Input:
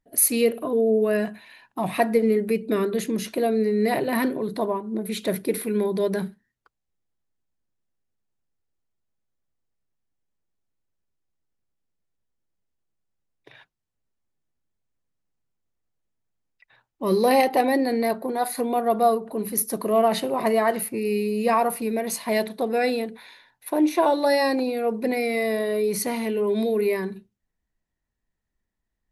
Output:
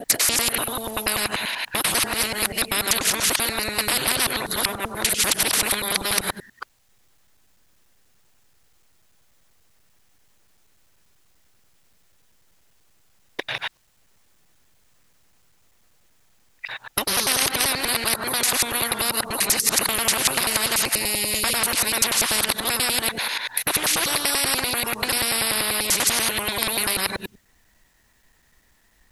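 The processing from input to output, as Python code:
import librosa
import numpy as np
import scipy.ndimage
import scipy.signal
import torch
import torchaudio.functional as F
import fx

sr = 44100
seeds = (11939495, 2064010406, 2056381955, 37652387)

y = fx.local_reverse(x, sr, ms=97.0)
y = fx.tilt_shelf(y, sr, db=-5.5, hz=660.0)
y = fx.spectral_comp(y, sr, ratio=10.0)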